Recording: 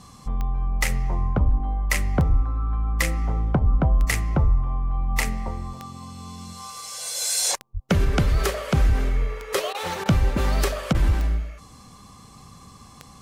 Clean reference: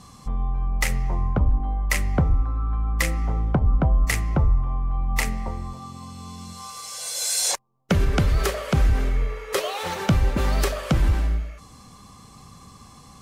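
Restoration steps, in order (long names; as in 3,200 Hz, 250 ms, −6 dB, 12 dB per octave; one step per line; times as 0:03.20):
click removal
0:02.32–0:02.44: high-pass filter 140 Hz 24 dB per octave
0:07.73–0:07.85: high-pass filter 140 Hz 24 dB per octave
0:08.20–0:08.32: high-pass filter 140 Hz 24 dB per octave
repair the gap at 0:09.73/0:10.04/0:10.93, 15 ms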